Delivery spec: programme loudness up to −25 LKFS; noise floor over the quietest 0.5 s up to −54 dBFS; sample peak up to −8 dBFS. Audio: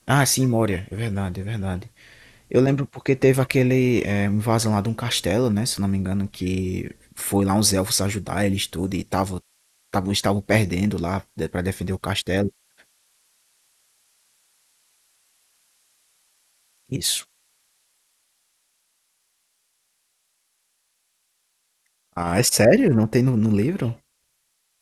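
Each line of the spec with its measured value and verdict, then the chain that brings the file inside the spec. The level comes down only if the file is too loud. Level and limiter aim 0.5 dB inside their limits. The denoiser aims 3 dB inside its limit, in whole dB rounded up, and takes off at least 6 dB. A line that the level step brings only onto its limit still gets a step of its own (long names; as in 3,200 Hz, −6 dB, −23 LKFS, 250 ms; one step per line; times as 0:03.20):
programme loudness −22.0 LKFS: out of spec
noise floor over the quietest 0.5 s −71 dBFS: in spec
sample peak −2.5 dBFS: out of spec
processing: level −3.5 dB
brickwall limiter −8.5 dBFS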